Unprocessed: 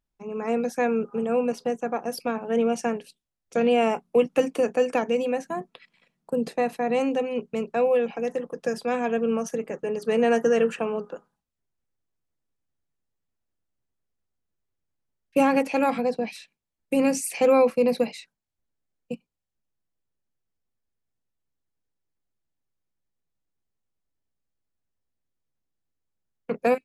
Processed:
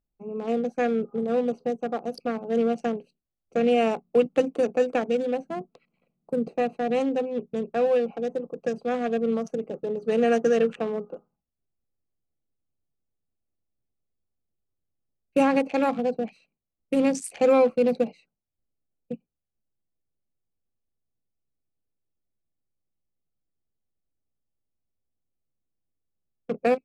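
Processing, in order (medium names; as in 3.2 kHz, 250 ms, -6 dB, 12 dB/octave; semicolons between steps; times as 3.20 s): local Wiener filter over 25 samples; low-pass 10 kHz 24 dB/octave; band-stop 950 Hz, Q 5.7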